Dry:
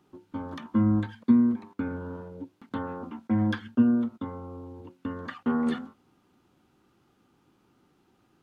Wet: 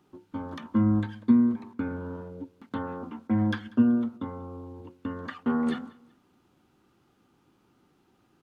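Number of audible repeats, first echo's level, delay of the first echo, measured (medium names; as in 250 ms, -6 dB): 2, -23.0 dB, 190 ms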